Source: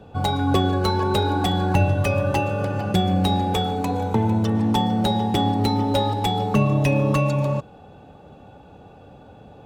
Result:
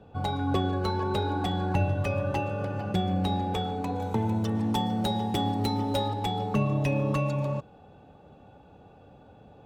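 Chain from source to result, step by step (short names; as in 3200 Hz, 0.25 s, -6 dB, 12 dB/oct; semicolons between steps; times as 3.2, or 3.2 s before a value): high shelf 5900 Hz -9 dB, from 4 s +3.5 dB, from 6.08 s -5 dB; gain -7 dB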